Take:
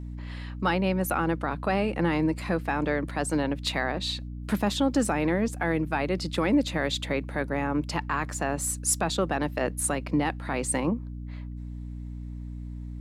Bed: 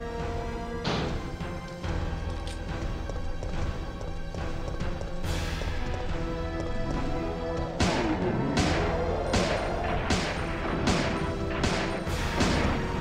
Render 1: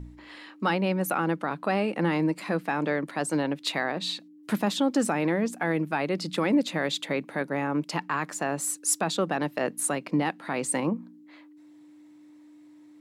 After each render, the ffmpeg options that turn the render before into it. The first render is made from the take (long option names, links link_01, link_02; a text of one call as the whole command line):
ffmpeg -i in.wav -af "bandreject=frequency=60:width_type=h:width=4,bandreject=frequency=120:width_type=h:width=4,bandreject=frequency=180:width_type=h:width=4,bandreject=frequency=240:width_type=h:width=4" out.wav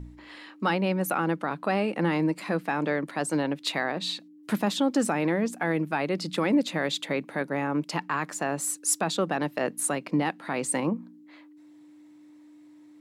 ffmpeg -i in.wav -af anull out.wav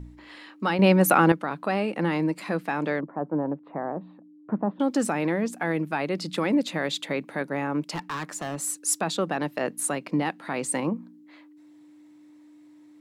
ffmpeg -i in.wav -filter_complex "[0:a]asettb=1/sr,asplit=3[link_01][link_02][link_03];[link_01]atrim=end=3.004[link_04];[link_02]atrim=start=3:end=4.8,asetpts=PTS-STARTPTS,afade=type=in:duration=0.004:curve=qsin,afade=type=out:start_time=1.796:duration=0.004:curve=qsin,lowpass=frequency=1100:width=0.5412,lowpass=frequency=1100:width=1.3066[link_05];[link_03]atrim=start=4.796[link_06];[link_04][link_05]acrossfade=duration=0.004:curve1=hsin:curve2=qsin[link_07];[link_07][link_06]acrossfade=duration=0.004:curve1=qsin:curve2=hsin,asettb=1/sr,asplit=3[link_08][link_09][link_10];[link_08]atrim=end=7.914[link_11];[link_09]atrim=start=7.91:end=8.56,asetpts=PTS-STARTPTS,afade=type=in:duration=0.004:curve=qsin,afade=type=out:start_time=0.646:duration=0.004:curve=qsin,asoftclip=type=hard:threshold=-26.5dB[link_12];[link_10]atrim=start=8.556[link_13];[link_11][link_12]acrossfade=duration=0.004:curve1=hsin:curve2=qsin[link_14];[link_14][link_13]acrossfade=duration=0.004:curve1=qsin:curve2=hsin,asplit=3[link_15][link_16][link_17];[link_15]atrim=end=0.792[link_18];[link_16]atrim=start=0.788:end=1.322,asetpts=PTS-STARTPTS,volume=8.5dB[link_19];[link_17]atrim=start=1.318[link_20];[link_18][link_19]acrossfade=duration=0.004:curve1=hsin:curve2=hsin[link_21];[link_21][link_20]acrossfade=duration=0.004:curve1=hsin:curve2=hsin" out.wav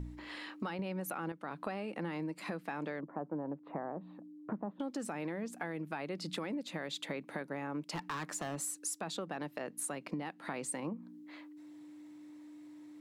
ffmpeg -i in.wav -af "alimiter=limit=-18.5dB:level=0:latency=1:release=430,acompressor=threshold=-37dB:ratio=5" out.wav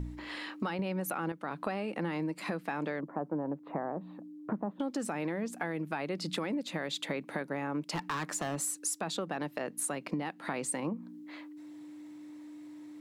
ffmpeg -i in.wav -af "volume=4.5dB" out.wav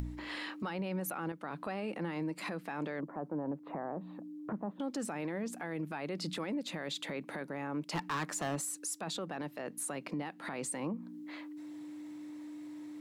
ffmpeg -i in.wav -af "acompressor=mode=upward:threshold=-42dB:ratio=2.5,alimiter=level_in=5.5dB:limit=-24dB:level=0:latency=1:release=21,volume=-5.5dB" out.wav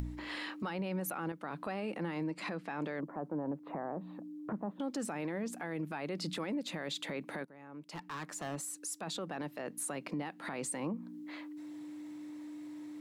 ffmpeg -i in.wav -filter_complex "[0:a]asettb=1/sr,asplit=3[link_01][link_02][link_03];[link_01]atrim=end=2.234[link_04];[link_02]atrim=start=2.23:end=2.81,asetpts=PTS-STARTPTS,afade=type=in:duration=0.004:curve=qsin,afade=type=out:start_time=0.576:duration=0.004:curve=qsin,lowpass=7100[link_05];[link_03]atrim=start=2.806[link_06];[link_04][link_05]acrossfade=duration=0.004:curve1=hsin:curve2=qsin[link_07];[link_07][link_06]acrossfade=duration=0.004:curve1=qsin:curve2=hsin,asplit=2[link_08][link_09];[link_08]atrim=end=7.45,asetpts=PTS-STARTPTS,afade=type=out:start_time=7.446:duration=0.004:curve=hsin:silence=0.133352[link_10];[link_09]atrim=start=7.45,asetpts=PTS-STARTPTS,afade=type=in:duration=1.91:silence=0.133352[link_11];[link_10][link_11]concat=n=2:v=0:a=1" out.wav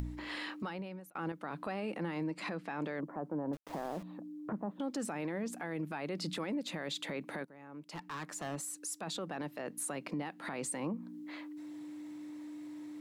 ffmpeg -i in.wav -filter_complex "[0:a]asettb=1/sr,asplit=3[link_01][link_02][link_03];[link_01]atrim=end=3.534[link_04];[link_02]atrim=start=3.53:end=4.03,asetpts=PTS-STARTPTS,afade=type=in:duration=0.004:curve=qsin,afade=type=out:start_time=0.496:duration=0.004:curve=qsin,aeval=exprs='val(0)*gte(abs(val(0)),0.00501)':channel_layout=same[link_05];[link_03]atrim=start=4.026[link_06];[link_04][link_05]acrossfade=duration=0.004:curve1=hsin:curve2=qsin[link_07];[link_07][link_06]acrossfade=duration=0.004:curve1=qsin:curve2=hsin,asplit=2[link_08][link_09];[link_08]atrim=end=1.15,asetpts=PTS-STARTPTS,afade=type=out:start_time=0.56:duration=0.59[link_10];[link_09]atrim=start=1.15,asetpts=PTS-STARTPTS,afade=type=in:duration=0.004:curve=hsin[link_11];[link_10][link_11]concat=n=2:v=0:a=1" out.wav